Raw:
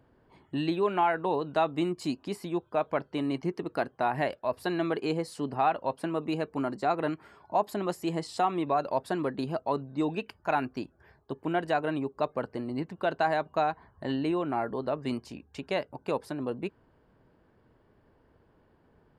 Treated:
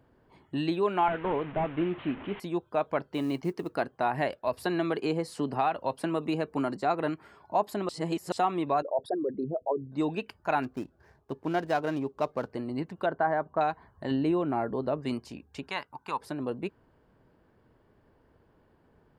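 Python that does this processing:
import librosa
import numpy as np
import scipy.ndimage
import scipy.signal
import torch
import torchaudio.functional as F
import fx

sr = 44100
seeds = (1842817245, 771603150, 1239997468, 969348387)

y = fx.delta_mod(x, sr, bps=16000, step_db=-37.0, at=(1.08, 2.4))
y = fx.quant_float(y, sr, bits=4, at=(3.11, 3.76))
y = fx.band_squash(y, sr, depth_pct=70, at=(4.47, 6.77))
y = fx.envelope_sharpen(y, sr, power=3.0, at=(8.82, 9.92))
y = fx.median_filter(y, sr, points=15, at=(10.62, 12.5), fade=0.02)
y = fx.savgol(y, sr, points=41, at=(13.06, 13.61))
y = fx.tilt_shelf(y, sr, db=3.5, hz=750.0, at=(14.11, 15.01))
y = fx.low_shelf_res(y, sr, hz=750.0, db=-8.0, q=3.0, at=(15.69, 16.21))
y = fx.edit(y, sr, fx.reverse_span(start_s=7.89, length_s=0.43), tone=tone)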